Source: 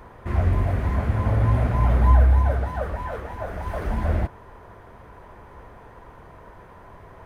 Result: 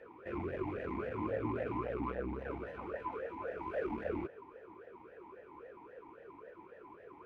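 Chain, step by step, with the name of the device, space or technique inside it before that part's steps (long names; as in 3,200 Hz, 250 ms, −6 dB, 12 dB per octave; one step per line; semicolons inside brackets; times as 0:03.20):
talk box (tube saturation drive 19 dB, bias 0.45; formant filter swept between two vowels e-u 3.7 Hz)
level +6 dB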